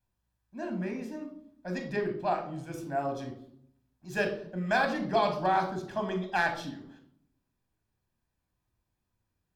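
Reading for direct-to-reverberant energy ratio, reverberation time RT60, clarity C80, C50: 3.5 dB, 0.65 s, 12.0 dB, 8.5 dB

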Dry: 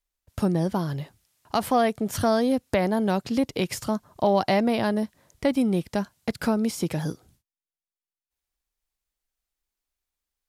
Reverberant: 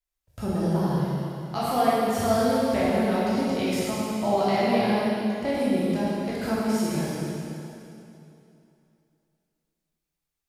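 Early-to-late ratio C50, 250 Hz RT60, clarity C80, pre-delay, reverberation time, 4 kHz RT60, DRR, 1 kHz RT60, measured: −5.0 dB, 2.9 s, −2.5 dB, 7 ms, 2.8 s, 2.6 s, −9.5 dB, 2.8 s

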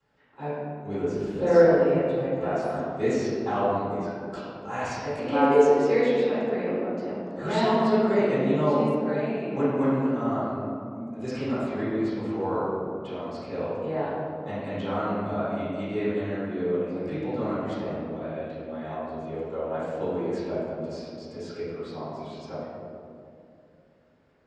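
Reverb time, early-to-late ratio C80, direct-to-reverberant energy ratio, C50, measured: 2.5 s, −1.5 dB, −15.5 dB, −4.0 dB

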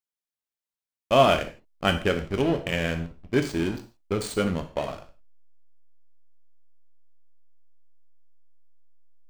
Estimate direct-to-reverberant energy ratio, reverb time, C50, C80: 7.0 dB, non-exponential decay, 12.0 dB, 16.0 dB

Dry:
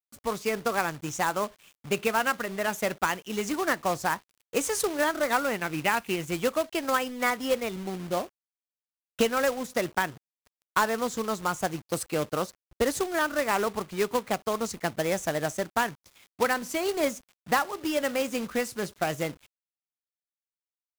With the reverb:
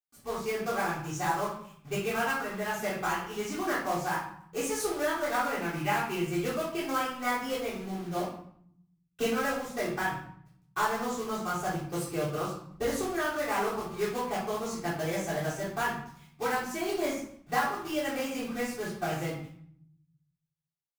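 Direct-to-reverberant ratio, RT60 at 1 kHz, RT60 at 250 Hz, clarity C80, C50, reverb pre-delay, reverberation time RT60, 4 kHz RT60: −10.5 dB, 0.65 s, 1.1 s, 7.0 dB, 3.0 dB, 3 ms, 0.65 s, 0.45 s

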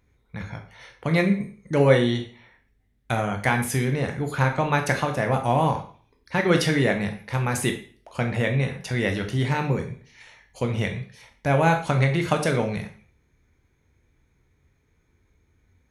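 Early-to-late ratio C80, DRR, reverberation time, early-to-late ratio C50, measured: 13.5 dB, 4.0 dB, 0.45 s, 9.5 dB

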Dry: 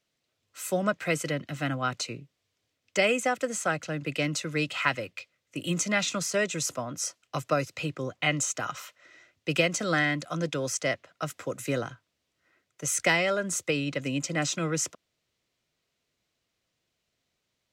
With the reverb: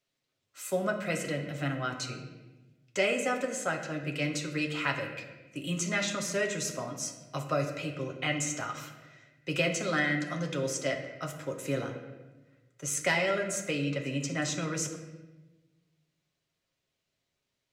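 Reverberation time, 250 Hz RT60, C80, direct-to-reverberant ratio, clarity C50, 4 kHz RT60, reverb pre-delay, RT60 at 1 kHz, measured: 1.1 s, 1.5 s, 9.0 dB, 1.0 dB, 7.5 dB, 0.85 s, 5 ms, 1.0 s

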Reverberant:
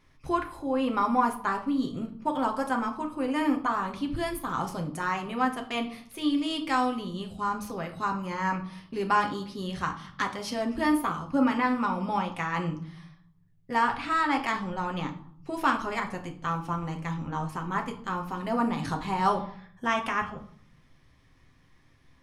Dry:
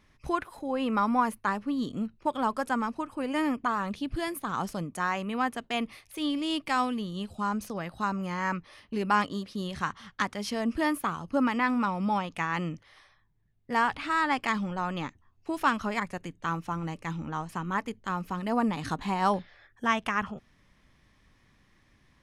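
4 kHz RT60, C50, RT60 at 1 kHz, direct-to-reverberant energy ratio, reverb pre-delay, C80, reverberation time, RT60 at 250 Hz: 0.40 s, 11.5 dB, 0.60 s, 2.5 dB, 6 ms, 15.5 dB, 0.60 s, 0.90 s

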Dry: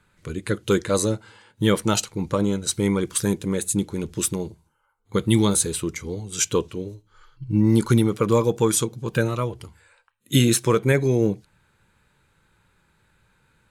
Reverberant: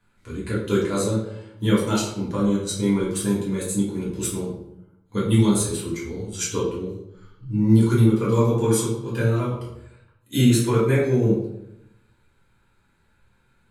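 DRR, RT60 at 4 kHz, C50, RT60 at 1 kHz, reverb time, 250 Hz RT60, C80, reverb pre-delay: −7.5 dB, 0.55 s, 3.5 dB, 0.75 s, 0.85 s, 1.0 s, 7.0 dB, 3 ms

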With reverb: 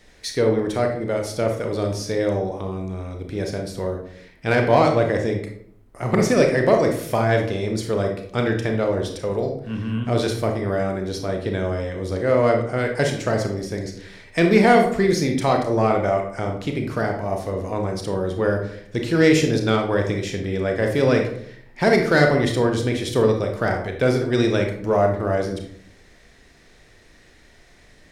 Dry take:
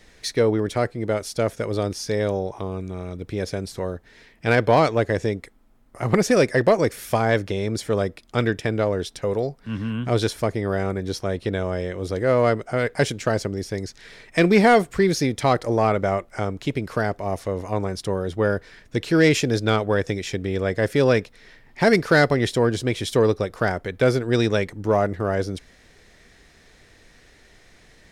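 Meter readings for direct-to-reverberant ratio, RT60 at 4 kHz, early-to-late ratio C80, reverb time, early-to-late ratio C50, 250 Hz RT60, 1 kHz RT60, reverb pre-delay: 2.5 dB, 0.40 s, 10.5 dB, 0.70 s, 6.0 dB, 0.75 s, 0.60 s, 27 ms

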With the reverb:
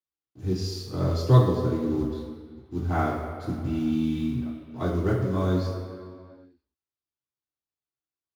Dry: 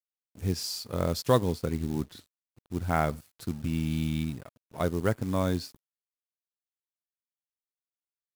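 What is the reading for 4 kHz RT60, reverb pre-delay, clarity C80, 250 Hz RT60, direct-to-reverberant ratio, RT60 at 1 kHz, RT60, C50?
1.6 s, 3 ms, 4.0 dB, 2.0 s, −9.0 dB, 2.2 s, 2.2 s, 2.0 dB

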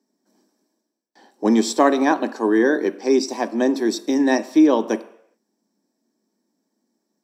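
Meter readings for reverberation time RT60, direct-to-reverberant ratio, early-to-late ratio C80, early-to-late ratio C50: non-exponential decay, 10.5 dB, 18.5 dB, 16.5 dB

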